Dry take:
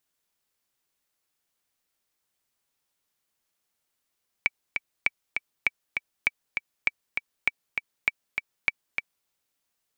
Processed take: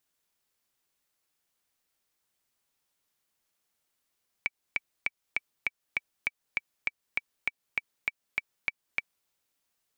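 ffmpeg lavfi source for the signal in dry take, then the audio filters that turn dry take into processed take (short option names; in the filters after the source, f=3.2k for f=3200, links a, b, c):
-f lavfi -i "aevalsrc='pow(10,(-8-5.5*gte(mod(t,2*60/199),60/199))/20)*sin(2*PI*2300*mod(t,60/199))*exp(-6.91*mod(t,60/199)/0.03)':d=4.82:s=44100"
-af "alimiter=limit=-14.5dB:level=0:latency=1:release=244"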